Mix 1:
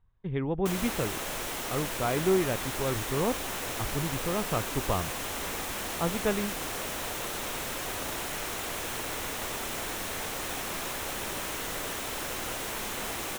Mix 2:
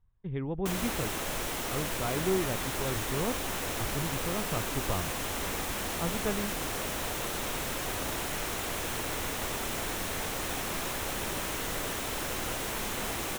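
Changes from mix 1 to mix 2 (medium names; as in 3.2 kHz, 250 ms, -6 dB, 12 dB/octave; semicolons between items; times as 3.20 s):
speech -6.0 dB; master: add bass shelf 250 Hz +5 dB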